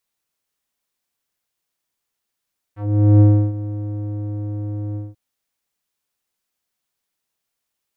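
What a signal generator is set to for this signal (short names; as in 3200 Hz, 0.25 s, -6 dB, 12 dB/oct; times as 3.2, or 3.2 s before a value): synth note square G#2 12 dB/oct, low-pass 370 Hz, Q 1.2, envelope 2.5 oct, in 0.11 s, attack 0.443 s, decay 0.32 s, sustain -16.5 dB, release 0.19 s, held 2.20 s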